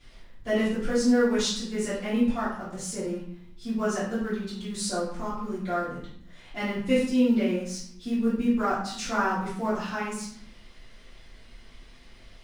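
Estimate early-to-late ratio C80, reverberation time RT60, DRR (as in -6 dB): 6.5 dB, 0.60 s, -13.5 dB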